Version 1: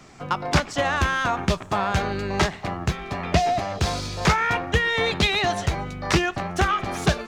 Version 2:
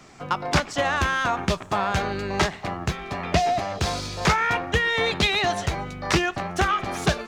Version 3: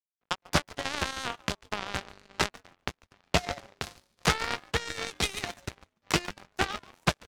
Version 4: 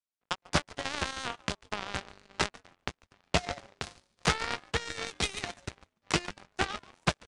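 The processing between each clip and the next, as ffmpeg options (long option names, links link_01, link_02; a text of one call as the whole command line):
ffmpeg -i in.wav -af "lowshelf=frequency=200:gain=-3.5" out.wav
ffmpeg -i in.wav -filter_complex "[0:a]aeval=exprs='sgn(val(0))*max(abs(val(0))-0.0299,0)':channel_layout=same,asplit=5[link_01][link_02][link_03][link_04][link_05];[link_02]adelay=144,afreqshift=-150,volume=-8dB[link_06];[link_03]adelay=288,afreqshift=-300,volume=-16.2dB[link_07];[link_04]adelay=432,afreqshift=-450,volume=-24.4dB[link_08];[link_05]adelay=576,afreqshift=-600,volume=-32.5dB[link_09];[link_01][link_06][link_07][link_08][link_09]amix=inputs=5:normalize=0,aeval=exprs='0.668*(cos(1*acos(clip(val(0)/0.668,-1,1)))-cos(1*PI/2))+0.0944*(cos(7*acos(clip(val(0)/0.668,-1,1)))-cos(7*PI/2))':channel_layout=same" out.wav
ffmpeg -i in.wav -af "aresample=22050,aresample=44100,volume=-2dB" out.wav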